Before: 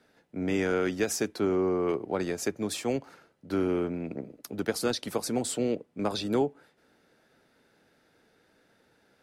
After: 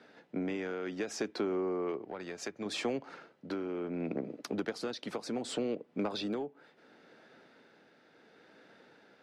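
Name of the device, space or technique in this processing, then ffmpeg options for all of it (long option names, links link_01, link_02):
AM radio: -filter_complex "[0:a]highpass=180,lowpass=4400,acompressor=threshold=-36dB:ratio=8,asoftclip=type=tanh:threshold=-28.5dB,tremolo=f=0.69:d=0.38,asettb=1/sr,asplit=3[link_01][link_02][link_03];[link_01]atrim=end=2.034[link_04];[link_02]atrim=start=2.03:end=2.66,asetpts=PTS-STARTPTS,afade=type=in:duration=0.004:curve=qsin,afade=type=out:start_time=0.626:duration=0.004:curve=qsin,equalizer=frequency=310:width_type=o:width=2.5:gain=-5.5[link_05];[link_03]atrim=start=2.656[link_06];[link_04][link_05]acrossfade=duration=0.004:curve1=hsin:curve2=qsin[link_07];[link_07][link_06]acrossfade=duration=0.004:curve1=qsin:curve2=hsin,volume=7dB"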